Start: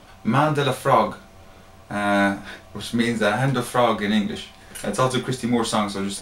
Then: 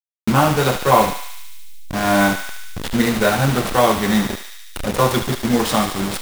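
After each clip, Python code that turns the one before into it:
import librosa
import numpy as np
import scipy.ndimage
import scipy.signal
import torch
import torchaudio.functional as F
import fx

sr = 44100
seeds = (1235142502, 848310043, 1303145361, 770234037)

y = fx.delta_hold(x, sr, step_db=-22.0)
y = fx.echo_thinned(y, sr, ms=73, feedback_pct=80, hz=1200.0, wet_db=-7.0)
y = F.gain(torch.from_numpy(y), 4.0).numpy()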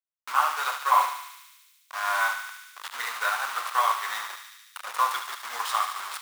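y = fx.ladder_highpass(x, sr, hz=970.0, resonance_pct=55)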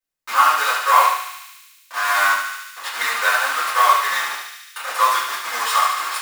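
y = fx.dynamic_eq(x, sr, hz=800.0, q=3.1, threshold_db=-41.0, ratio=4.0, max_db=-6)
y = fx.room_shoebox(y, sr, seeds[0], volume_m3=33.0, walls='mixed', distance_m=2.0)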